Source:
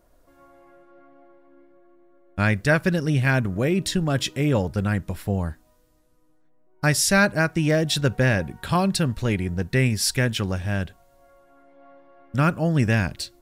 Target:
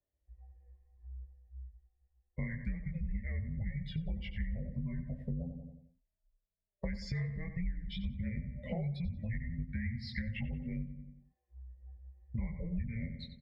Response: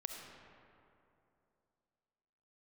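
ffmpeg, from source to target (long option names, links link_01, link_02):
-filter_complex "[0:a]asplit=2[link_01][link_02];[link_02]asoftclip=type=hard:threshold=-20dB,volume=-4dB[link_03];[link_01][link_03]amix=inputs=2:normalize=0,acrossover=split=320|3000[link_04][link_05][link_06];[link_05]acompressor=threshold=-33dB:ratio=2.5[link_07];[link_04][link_07][link_06]amix=inputs=3:normalize=0,asplit=3[link_08][link_09][link_10];[link_08]bandpass=frequency=300:width_type=q:width=8,volume=0dB[link_11];[link_09]bandpass=frequency=870:width_type=q:width=8,volume=-6dB[link_12];[link_10]bandpass=frequency=2240:width_type=q:width=8,volume=-9dB[link_13];[link_11][link_12][link_13]amix=inputs=3:normalize=0,afftdn=noise_reduction=28:noise_floor=-46,flanger=delay=19:depth=3.1:speed=2.1,asplit=2[link_14][link_15];[link_15]adelay=91,lowpass=frequency=3600:poles=1,volume=-11dB,asplit=2[link_16][link_17];[link_17]adelay=91,lowpass=frequency=3600:poles=1,volume=0.44,asplit=2[link_18][link_19];[link_19]adelay=91,lowpass=frequency=3600:poles=1,volume=0.44,asplit=2[link_20][link_21];[link_21]adelay=91,lowpass=frequency=3600:poles=1,volume=0.44,asplit=2[link_22][link_23];[link_23]adelay=91,lowpass=frequency=3600:poles=1,volume=0.44[link_24];[link_14][link_16][link_18][link_20][link_22][link_24]amix=inputs=6:normalize=0,afreqshift=-340,highpass=41,acompressor=threshold=-50dB:ratio=6,volume=15dB"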